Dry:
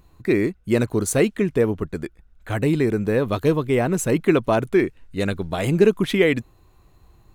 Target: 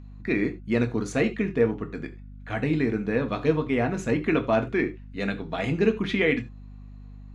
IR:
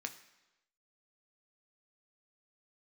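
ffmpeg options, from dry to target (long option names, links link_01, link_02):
-filter_complex "[0:a]lowpass=4400[link_01];[1:a]atrim=start_sample=2205,atrim=end_sample=4410[link_02];[link_01][link_02]afir=irnorm=-1:irlink=0,aeval=exprs='val(0)+0.01*(sin(2*PI*50*n/s)+sin(2*PI*2*50*n/s)/2+sin(2*PI*3*50*n/s)/3+sin(2*PI*4*50*n/s)/4+sin(2*PI*5*50*n/s)/5)':channel_layout=same,volume=-1.5dB"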